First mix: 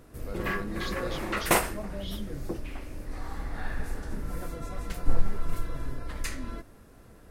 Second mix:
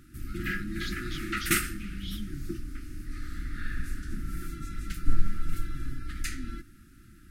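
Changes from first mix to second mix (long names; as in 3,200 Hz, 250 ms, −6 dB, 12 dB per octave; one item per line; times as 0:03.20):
second sound: entry −0.85 s
master: add linear-phase brick-wall band-stop 370–1,200 Hz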